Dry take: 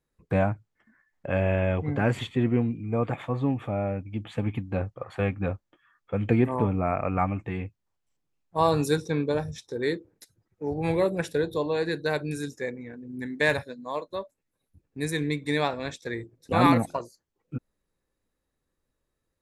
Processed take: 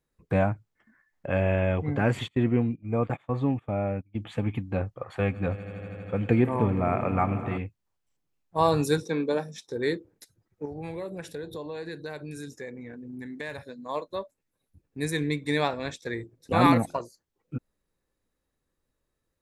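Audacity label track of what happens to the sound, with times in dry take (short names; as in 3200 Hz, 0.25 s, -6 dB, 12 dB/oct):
2.280000	4.190000	gate -34 dBFS, range -22 dB
5.020000	7.580000	swelling echo 80 ms, loudest repeat 5, its level -18 dB
9.030000	9.680000	steep high-pass 170 Hz
10.650000	13.890000	compressor 3:1, threshold -36 dBFS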